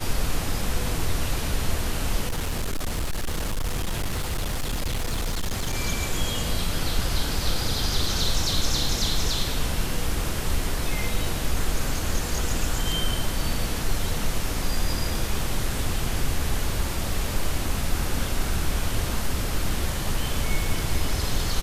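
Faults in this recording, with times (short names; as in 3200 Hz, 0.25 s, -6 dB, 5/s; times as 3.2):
2.27–5.75 clipped -22.5 dBFS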